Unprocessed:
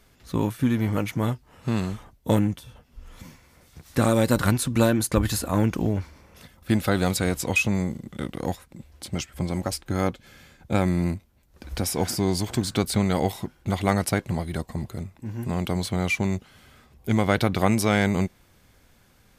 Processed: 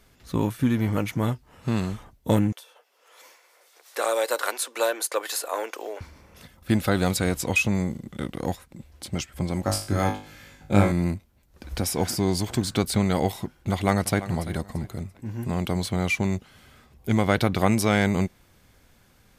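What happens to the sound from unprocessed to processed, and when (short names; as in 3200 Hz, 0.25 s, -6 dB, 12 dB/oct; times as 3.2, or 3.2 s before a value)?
2.52–6.01 steep high-pass 430 Hz
9.65–10.92 flutter echo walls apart 3.4 m, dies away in 0.38 s
13.71–14.22 echo throw 0.34 s, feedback 30%, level -14.5 dB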